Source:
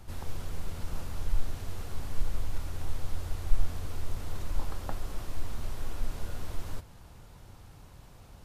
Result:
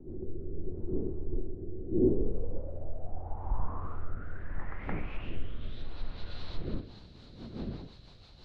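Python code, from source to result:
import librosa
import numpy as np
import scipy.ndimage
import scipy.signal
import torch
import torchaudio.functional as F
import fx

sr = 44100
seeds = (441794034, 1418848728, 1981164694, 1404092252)

y = fx.dmg_wind(x, sr, seeds[0], corner_hz=260.0, level_db=-41.0)
y = 10.0 ** (-18.0 / 20.0) * (np.abs((y / 10.0 ** (-18.0 / 20.0) + 3.0) % 4.0 - 2.0) - 1.0)
y = fx.env_lowpass_down(y, sr, base_hz=2100.0, full_db=-23.5)
y = fx.rotary_switch(y, sr, hz=0.75, then_hz=6.0, switch_at_s=6.52)
y = fx.filter_sweep_lowpass(y, sr, from_hz=370.0, to_hz=4100.0, start_s=2.06, end_s=5.91, q=7.2)
y = F.gain(torch.from_numpy(y), -2.0).numpy()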